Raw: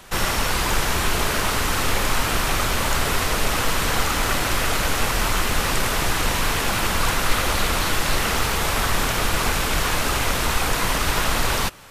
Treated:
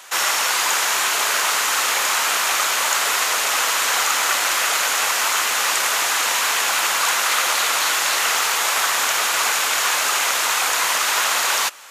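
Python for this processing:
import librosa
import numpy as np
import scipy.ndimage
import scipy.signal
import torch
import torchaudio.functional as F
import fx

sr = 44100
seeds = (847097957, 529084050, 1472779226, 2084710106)

y = scipy.signal.sosfilt(scipy.signal.butter(2, 820.0, 'highpass', fs=sr, output='sos'), x)
y = fx.peak_eq(y, sr, hz=6800.0, db=6.0, octaves=0.32)
y = y * 10.0 ** (4.5 / 20.0)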